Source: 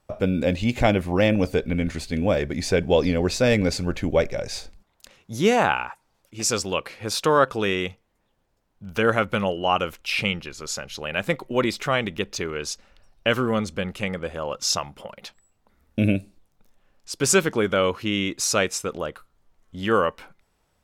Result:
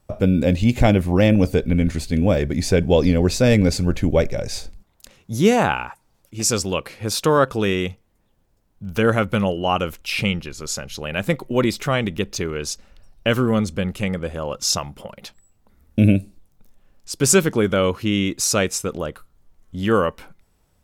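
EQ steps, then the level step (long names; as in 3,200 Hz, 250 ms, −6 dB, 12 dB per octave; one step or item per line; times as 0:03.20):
low-shelf EQ 360 Hz +9.5 dB
high-shelf EQ 6,600 Hz +9 dB
−1.0 dB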